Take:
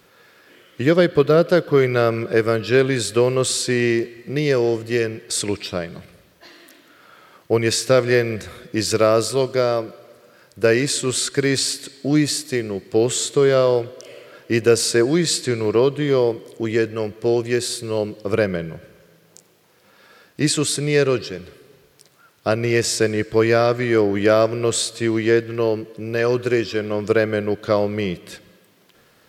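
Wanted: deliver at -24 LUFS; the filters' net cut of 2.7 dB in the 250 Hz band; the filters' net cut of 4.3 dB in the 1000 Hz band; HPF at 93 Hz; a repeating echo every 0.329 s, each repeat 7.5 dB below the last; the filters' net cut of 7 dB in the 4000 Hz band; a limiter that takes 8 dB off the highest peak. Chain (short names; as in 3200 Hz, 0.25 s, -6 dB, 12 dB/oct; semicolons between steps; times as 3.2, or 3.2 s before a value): HPF 93 Hz; bell 250 Hz -3.5 dB; bell 1000 Hz -5.5 dB; bell 4000 Hz -8.5 dB; limiter -14 dBFS; feedback echo 0.329 s, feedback 42%, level -7.5 dB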